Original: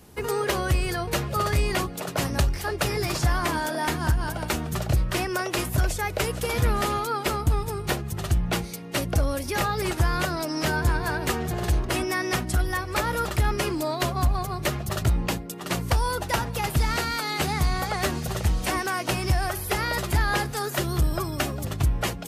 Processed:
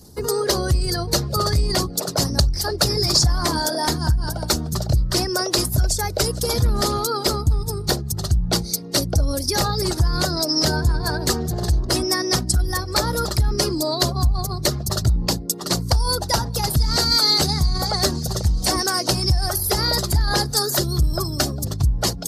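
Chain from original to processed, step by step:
spectral envelope exaggerated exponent 1.5
high shelf with overshoot 3,500 Hz +10 dB, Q 3
level +4 dB

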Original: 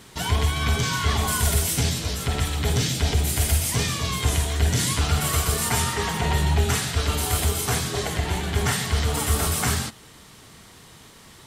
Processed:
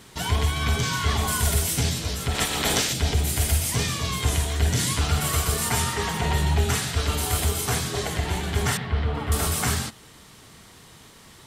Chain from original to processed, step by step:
0:02.34–0:02.92: ceiling on every frequency bin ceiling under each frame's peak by 21 dB
0:08.77–0:09.32: high-frequency loss of the air 390 metres
level −1 dB

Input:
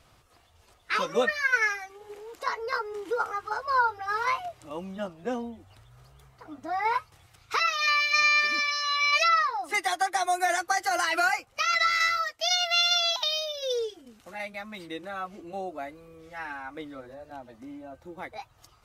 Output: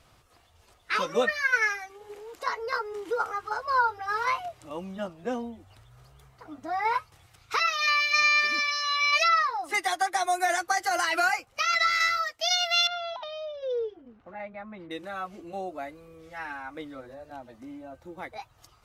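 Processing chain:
0:12.87–0:14.91: low-pass filter 1,400 Hz 12 dB per octave

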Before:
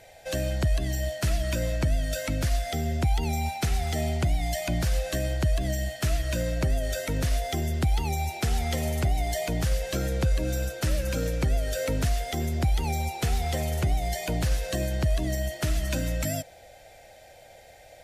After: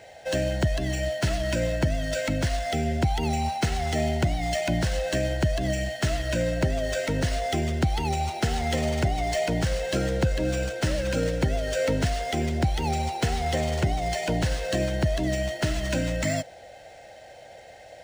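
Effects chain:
notch comb filter 1,200 Hz
linearly interpolated sample-rate reduction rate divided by 3×
level +5 dB

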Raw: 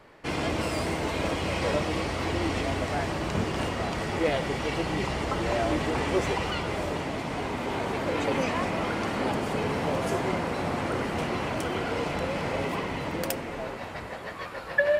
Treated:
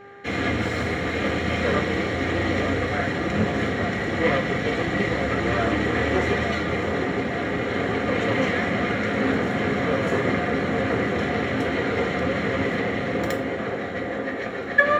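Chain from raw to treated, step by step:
lower of the sound and its delayed copy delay 0.55 ms
delay with a band-pass on its return 865 ms, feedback 73%, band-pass 480 Hz, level −5.5 dB
convolution reverb RT60 0.45 s, pre-delay 3 ms, DRR 2 dB
hum with harmonics 400 Hz, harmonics 4, −39 dBFS
level −6.5 dB

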